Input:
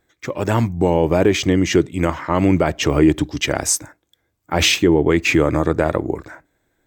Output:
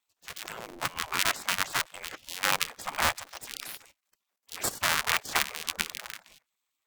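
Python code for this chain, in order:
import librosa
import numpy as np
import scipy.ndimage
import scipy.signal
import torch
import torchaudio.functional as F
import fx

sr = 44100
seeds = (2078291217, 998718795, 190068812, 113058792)

y = fx.cycle_switch(x, sr, every=2, mode='inverted')
y = fx.level_steps(y, sr, step_db=15)
y = fx.spec_gate(y, sr, threshold_db=-15, keep='weak')
y = fx.band_squash(y, sr, depth_pct=40, at=(4.84, 5.57))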